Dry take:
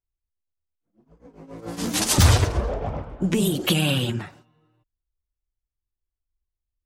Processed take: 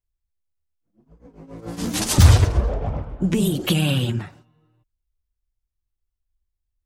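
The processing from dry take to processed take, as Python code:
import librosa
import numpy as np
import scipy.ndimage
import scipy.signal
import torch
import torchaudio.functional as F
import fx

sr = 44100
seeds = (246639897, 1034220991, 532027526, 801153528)

y = fx.low_shelf(x, sr, hz=180.0, db=8.0)
y = y * librosa.db_to_amplitude(-1.5)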